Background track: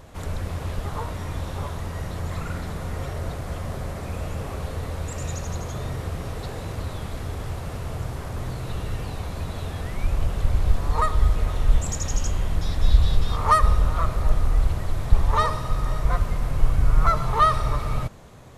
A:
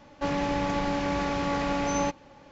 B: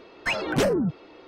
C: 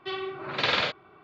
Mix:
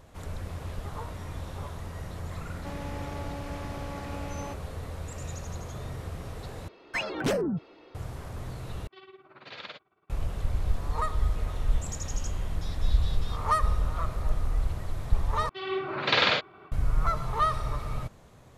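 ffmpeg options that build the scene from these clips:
-filter_complex "[3:a]asplit=2[s0][s1];[0:a]volume=0.422[s2];[s0]tremolo=f=18:d=0.72[s3];[s1]dynaudnorm=f=130:g=3:m=4.47[s4];[s2]asplit=4[s5][s6][s7][s8];[s5]atrim=end=6.684[s9];[2:a]atrim=end=1.27,asetpts=PTS-STARTPTS,volume=0.562[s10];[s6]atrim=start=7.946:end=8.874[s11];[s3]atrim=end=1.23,asetpts=PTS-STARTPTS,volume=0.2[s12];[s7]atrim=start=10.096:end=15.494[s13];[s4]atrim=end=1.23,asetpts=PTS-STARTPTS,volume=0.422[s14];[s8]atrim=start=16.716[s15];[1:a]atrim=end=2.51,asetpts=PTS-STARTPTS,volume=0.237,afade=t=in:d=0.004:c=hsin,afade=t=out:st=2.506:d=0.004:c=hsin,adelay=2430[s16];[s9][s10]acrossfade=d=0.004:c1=hsin:c2=hsin[s17];[s17][s11]acrossfade=d=0.004:c1=hsin:c2=hsin[s18];[s18][s12]acrossfade=d=0.004:c1=hsin:c2=hsin[s19];[s19][s13]acrossfade=d=0.004:c1=hsin:c2=hsin[s20];[s20][s14]acrossfade=d=0.004:c1=hsin:c2=hsin[s21];[s21][s15]acrossfade=d=0.004:c1=hsin:c2=hsin[s22];[s22][s16]amix=inputs=2:normalize=0"

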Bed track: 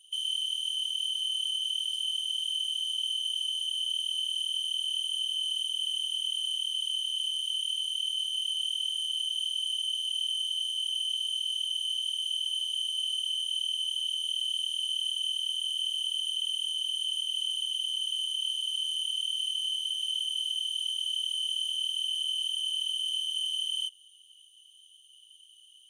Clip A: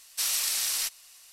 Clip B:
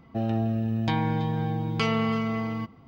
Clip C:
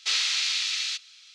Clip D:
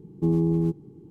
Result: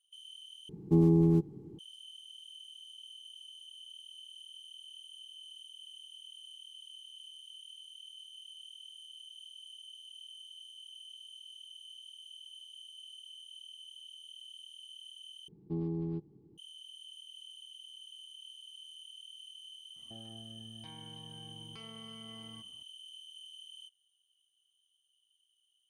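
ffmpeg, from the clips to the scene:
-filter_complex "[4:a]asplit=2[s0][s1];[0:a]volume=0.106[s2];[s1]aresample=11025,aresample=44100[s3];[2:a]acompressor=threshold=0.0316:ratio=6:attack=3.2:release=140:knee=1:detection=peak[s4];[s2]asplit=3[s5][s6][s7];[s5]atrim=end=0.694[s8];[s0]atrim=end=1.1,asetpts=PTS-STARTPTS,volume=0.841[s9];[s6]atrim=start=1.786:end=15.484[s10];[s3]atrim=end=1.1,asetpts=PTS-STARTPTS,volume=0.224[s11];[s7]atrim=start=16.576[s12];[s4]atrim=end=2.87,asetpts=PTS-STARTPTS,volume=0.126,afade=t=in:d=0.004:c=hsin,afade=t=out:st=2.866:d=0.004:c=hsin,adelay=19960[s13];[s8][s9]acrossfade=d=0.004:c1=hsin:c2=hsin[s14];[s14][s10]acrossfade=d=0.004:c1=hsin:c2=hsin[s15];[s15][s11]acrossfade=d=0.004:c1=hsin:c2=hsin[s16];[s16][s12]acrossfade=d=0.004:c1=hsin:c2=hsin[s17];[s17][s13]amix=inputs=2:normalize=0"

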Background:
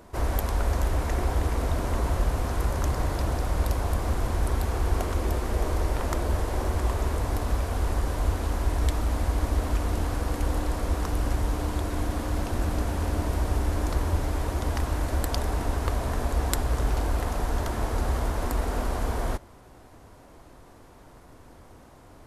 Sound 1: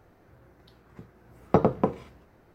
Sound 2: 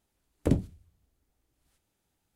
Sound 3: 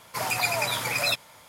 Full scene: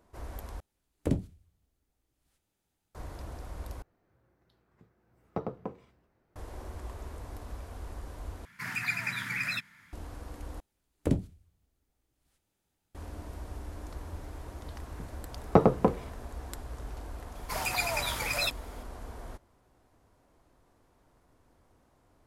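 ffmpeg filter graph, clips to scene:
-filter_complex "[2:a]asplit=2[s0][s1];[1:a]asplit=2[s2][s3];[3:a]asplit=2[s4][s5];[0:a]volume=0.168[s6];[s0]acontrast=28[s7];[s4]firequalizer=gain_entry='entry(130,0);entry(190,7);entry(280,-2);entry(540,-22);entry(1700,9);entry(3100,-7);entry(10000,-11)':delay=0.05:min_phase=1[s8];[s6]asplit=5[s9][s10][s11][s12][s13];[s9]atrim=end=0.604[s14];[s7]atrim=end=2.35,asetpts=PTS-STARTPTS,volume=0.376[s15];[s10]atrim=start=2.946:end=3.824[s16];[s2]atrim=end=2.54,asetpts=PTS-STARTPTS,volume=0.188[s17];[s11]atrim=start=6.356:end=8.454[s18];[s8]atrim=end=1.48,asetpts=PTS-STARTPTS,volume=0.531[s19];[s12]atrim=start=9.926:end=10.604[s20];[s1]atrim=end=2.35,asetpts=PTS-STARTPTS,volume=0.75[s21];[s13]atrim=start=12.946[s22];[s3]atrim=end=2.54,asetpts=PTS-STARTPTS,afade=t=in:d=0.004:c=hsin,afade=t=out:st=2.536:d=0.004:c=hsin,adelay=14010[s23];[s5]atrim=end=1.48,asetpts=PTS-STARTPTS,volume=0.562,afade=t=in:d=0.004:c=hsin,afade=t=out:st=1.476:d=0.004:c=hsin,adelay=17350[s24];[s14][s15]acrossfade=d=0.004:c1=hsin:c2=hsin[s25];[s25][s16]acrossfade=d=0.004:c1=hsin:c2=hsin[s26];[s26][s17]acrossfade=d=0.004:c1=hsin:c2=hsin[s27];[s27][s18]acrossfade=d=0.004:c1=hsin:c2=hsin[s28];[s28][s19]acrossfade=d=0.004:c1=hsin:c2=hsin[s29];[s29][s20]acrossfade=d=0.004:c1=hsin:c2=hsin[s30];[s30][s21]acrossfade=d=0.004:c1=hsin:c2=hsin[s31];[s31][s22]acrossfade=d=0.004:c1=hsin:c2=hsin[s32];[s32][s23][s24]amix=inputs=3:normalize=0"

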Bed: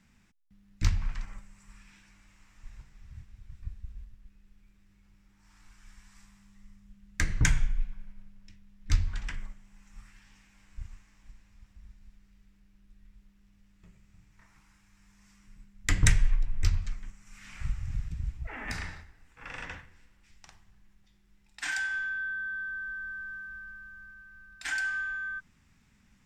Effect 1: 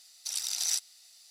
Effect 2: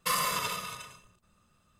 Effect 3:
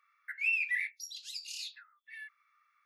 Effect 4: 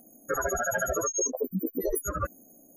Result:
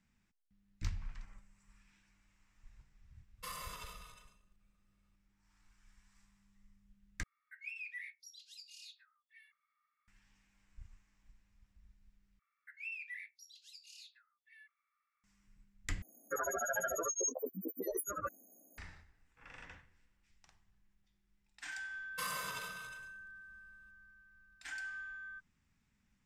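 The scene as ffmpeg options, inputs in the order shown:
-filter_complex "[2:a]asplit=2[s0][s1];[3:a]asplit=2[s2][s3];[0:a]volume=0.237[s4];[s2]aecho=1:1:3.2:0.73[s5];[4:a]highpass=f=410:p=1[s6];[s1]asplit=2[s7][s8];[s8]adelay=15,volume=0.224[s9];[s7][s9]amix=inputs=2:normalize=0[s10];[s4]asplit=4[s11][s12][s13][s14];[s11]atrim=end=7.234[s15];[s5]atrim=end=2.85,asetpts=PTS-STARTPTS,volume=0.188[s16];[s12]atrim=start=10.076:end=12.394[s17];[s3]atrim=end=2.85,asetpts=PTS-STARTPTS,volume=0.2[s18];[s13]atrim=start=15.236:end=16.024[s19];[s6]atrim=end=2.76,asetpts=PTS-STARTPTS,volume=0.447[s20];[s14]atrim=start=18.776[s21];[s0]atrim=end=1.79,asetpts=PTS-STARTPTS,volume=0.141,afade=t=in:d=0.004:c=hsin,afade=t=out:st=1.786:d=0.004:c=hsin,adelay=148617S[s22];[s10]atrim=end=1.79,asetpts=PTS-STARTPTS,volume=0.251,afade=t=in:d=0.004:c=hsin,afade=t=out:st=1.786:d=0.004:c=hsin,adelay=975492S[s23];[s15][s16]acrossfade=d=0.004:c1=hsin:c2=hsin[s24];[s24][s17]acrossfade=d=0.004:c1=hsin:c2=hsin[s25];[s25][s18]acrossfade=d=0.004:c1=hsin:c2=hsin[s26];[s26][s19]acrossfade=d=0.004:c1=hsin:c2=hsin[s27];[s27][s20]acrossfade=d=0.004:c1=hsin:c2=hsin[s28];[s28][s21]acrossfade=d=0.004:c1=hsin:c2=hsin[s29];[s29][s22][s23]amix=inputs=3:normalize=0"

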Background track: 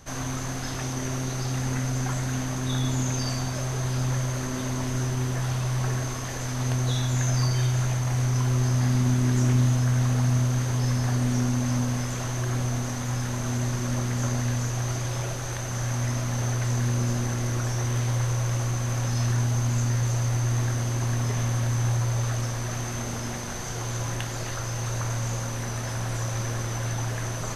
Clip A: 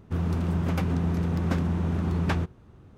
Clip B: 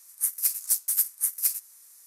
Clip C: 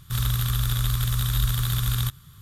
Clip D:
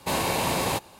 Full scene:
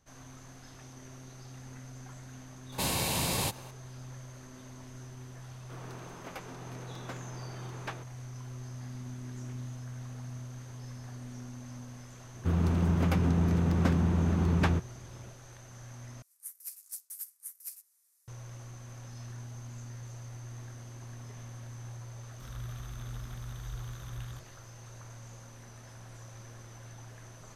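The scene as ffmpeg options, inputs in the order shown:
-filter_complex "[1:a]asplit=2[s0][s1];[0:a]volume=0.106[s2];[4:a]acrossover=split=190|3000[s3][s4][s5];[s4]acompressor=threshold=0.0224:ratio=6:attack=3.2:release=140:knee=2.83:detection=peak[s6];[s3][s6][s5]amix=inputs=3:normalize=0[s7];[s0]highpass=470[s8];[3:a]acrossover=split=2700[s9][s10];[s10]acompressor=threshold=0.00631:ratio=4:attack=1:release=60[s11];[s9][s11]amix=inputs=2:normalize=0[s12];[s2]asplit=2[s13][s14];[s13]atrim=end=16.224[s15];[2:a]atrim=end=2.06,asetpts=PTS-STARTPTS,volume=0.126[s16];[s14]atrim=start=18.276[s17];[s7]atrim=end=0.99,asetpts=PTS-STARTPTS,volume=0.944,afade=t=in:d=0.004:c=hsin,afade=t=out:st=0.986:d=0.004:c=hsin,adelay=2720[s18];[s8]atrim=end=2.97,asetpts=PTS-STARTPTS,volume=0.376,afade=t=in:d=0.004:c=hsin,afade=t=out:st=2.966:d=0.004:c=hsin,adelay=5580[s19];[s1]atrim=end=2.97,asetpts=PTS-STARTPTS,volume=0.944,afade=t=in:d=0.004:c=hsin,afade=t=out:st=2.966:d=0.004:c=hsin,adelay=12340[s20];[s12]atrim=end=2.41,asetpts=PTS-STARTPTS,volume=0.141,afade=t=in:d=0.004:c=hsin,afade=t=out:st=2.406:d=0.004:c=hsin,adelay=22300[s21];[s15][s16]acrossfade=d=0.004:c1=hsin:c2=hsin[s22];[s22][s17]acrossfade=d=0.004:c1=hsin:c2=hsin[s23];[s23][s18][s19][s20][s21]amix=inputs=5:normalize=0"

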